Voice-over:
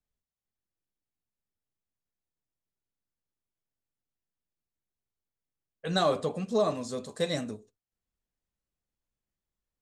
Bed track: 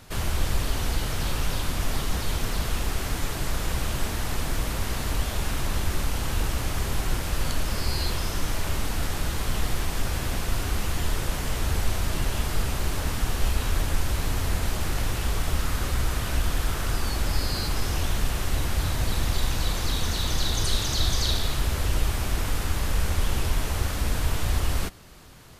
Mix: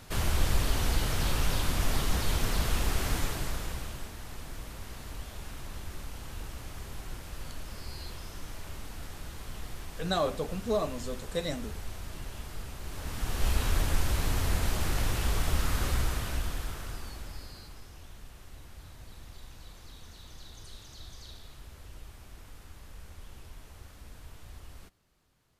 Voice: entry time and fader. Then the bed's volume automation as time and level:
4.15 s, -3.0 dB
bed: 3.16 s -1.5 dB
4.12 s -14.5 dB
12.8 s -14.5 dB
13.52 s -2.5 dB
15.92 s -2.5 dB
17.9 s -23 dB

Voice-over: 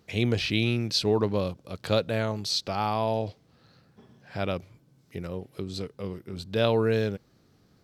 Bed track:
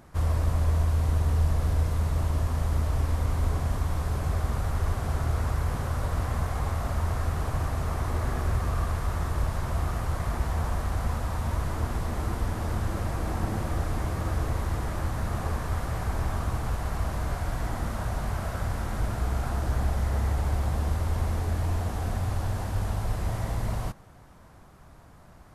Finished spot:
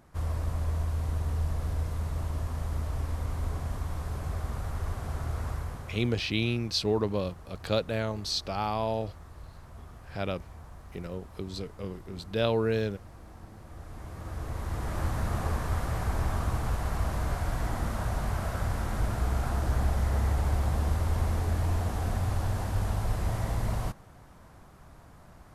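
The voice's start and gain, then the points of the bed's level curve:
5.80 s, -3.0 dB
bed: 5.53 s -6 dB
6.32 s -19 dB
13.58 s -19 dB
15.03 s -0.5 dB

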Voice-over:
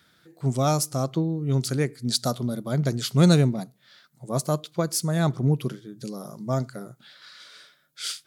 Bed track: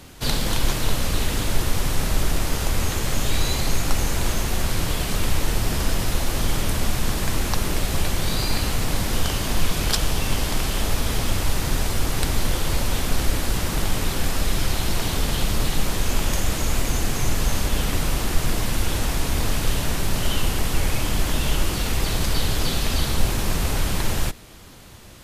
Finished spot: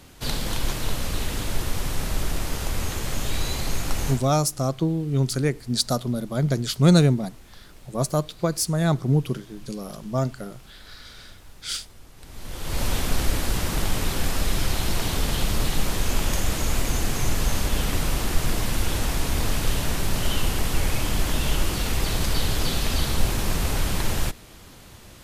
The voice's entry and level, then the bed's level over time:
3.65 s, +1.5 dB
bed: 4.1 s -4.5 dB
4.33 s -25.5 dB
12.16 s -25.5 dB
12.83 s -1.5 dB

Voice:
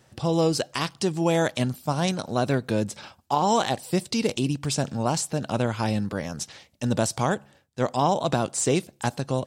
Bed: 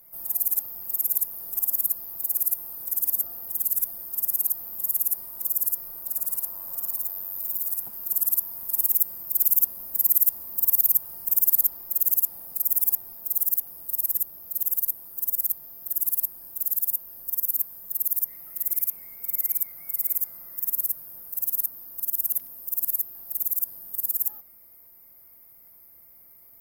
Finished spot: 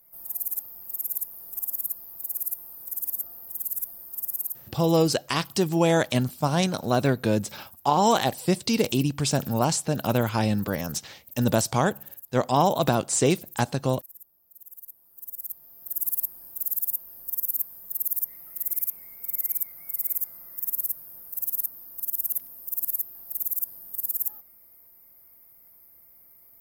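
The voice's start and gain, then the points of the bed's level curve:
4.55 s, +1.5 dB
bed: 4.42 s -5.5 dB
5.02 s -22 dB
14.62 s -22 dB
16.04 s -2 dB

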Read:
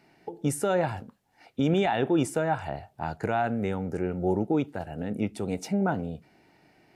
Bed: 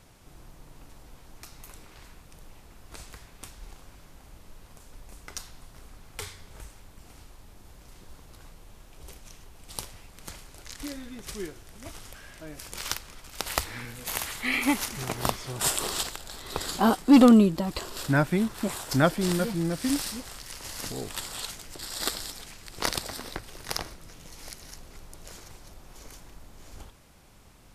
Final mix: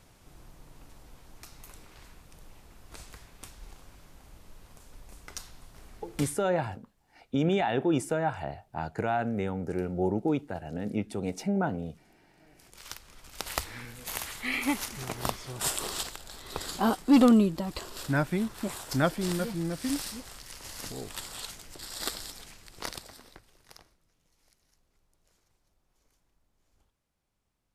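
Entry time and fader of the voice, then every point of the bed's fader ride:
5.75 s, -2.0 dB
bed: 6.26 s -2.5 dB
6.56 s -24 dB
12.26 s -24 dB
13.26 s -4 dB
22.49 s -4 dB
24.07 s -25.5 dB

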